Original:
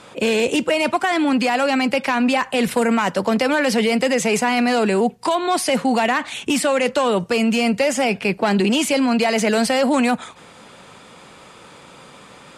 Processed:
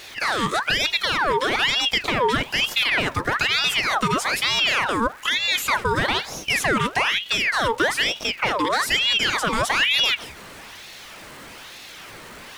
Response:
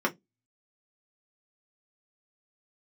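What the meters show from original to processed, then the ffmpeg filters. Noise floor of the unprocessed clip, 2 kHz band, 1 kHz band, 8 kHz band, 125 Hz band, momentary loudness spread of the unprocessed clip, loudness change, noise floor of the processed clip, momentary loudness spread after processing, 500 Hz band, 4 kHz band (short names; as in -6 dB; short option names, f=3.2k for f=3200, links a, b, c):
-44 dBFS, +2.5 dB, -2.5 dB, -3.0 dB, -1.5 dB, 3 LU, -2.0 dB, -41 dBFS, 20 LU, -9.0 dB, +6.0 dB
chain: -filter_complex "[0:a]aeval=exprs='val(0)+0.5*0.0188*sgn(val(0))':c=same,asplit=2[a][b];[1:a]atrim=start_sample=2205[c];[b][c]afir=irnorm=-1:irlink=0,volume=-22dB[d];[a][d]amix=inputs=2:normalize=0,aeval=exprs='val(0)*sin(2*PI*1900*n/s+1900*0.65/1.1*sin(2*PI*1.1*n/s))':c=same,volume=-2.5dB"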